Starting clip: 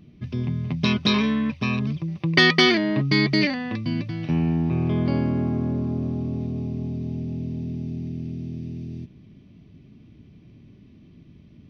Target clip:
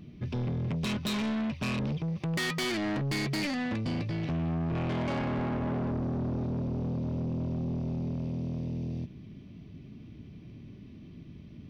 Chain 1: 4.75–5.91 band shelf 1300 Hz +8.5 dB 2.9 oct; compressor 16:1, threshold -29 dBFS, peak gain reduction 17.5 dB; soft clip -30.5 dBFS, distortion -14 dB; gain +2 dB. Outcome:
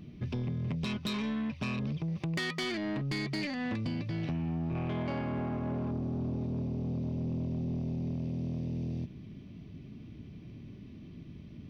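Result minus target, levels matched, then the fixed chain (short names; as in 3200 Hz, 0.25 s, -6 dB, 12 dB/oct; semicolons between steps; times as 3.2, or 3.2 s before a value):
compressor: peak gain reduction +8 dB
4.75–5.91 band shelf 1300 Hz +8.5 dB 2.9 oct; compressor 16:1, threshold -20.5 dBFS, peak gain reduction 9.5 dB; soft clip -30.5 dBFS, distortion -8 dB; gain +2 dB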